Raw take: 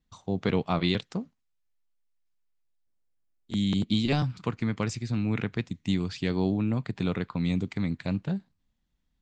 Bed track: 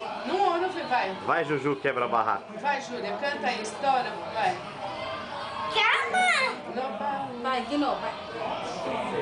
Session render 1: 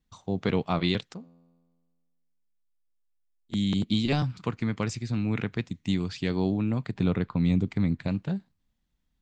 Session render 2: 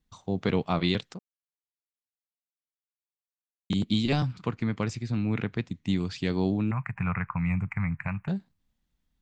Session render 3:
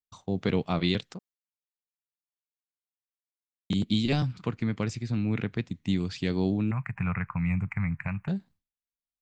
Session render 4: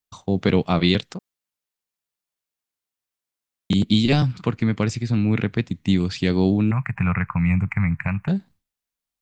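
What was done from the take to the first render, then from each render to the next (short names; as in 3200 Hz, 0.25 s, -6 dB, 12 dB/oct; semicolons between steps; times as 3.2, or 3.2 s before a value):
1.14–3.53 resonator 85 Hz, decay 1.6 s, mix 70%; 6.94–8.08 tilt -1.5 dB/oct
1.19–3.7 mute; 4.33–5.96 high shelf 5300 Hz -7 dB; 6.71–8.28 EQ curve 150 Hz 0 dB, 220 Hz -10 dB, 320 Hz -21 dB, 520 Hz -13 dB, 800 Hz +3 dB, 1100 Hz +8 dB, 2500 Hz +7 dB, 3500 Hz -29 dB, 6800 Hz -11 dB, 10000 Hz +1 dB
expander -50 dBFS; dynamic EQ 1000 Hz, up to -4 dB, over -43 dBFS, Q 1.2
gain +8 dB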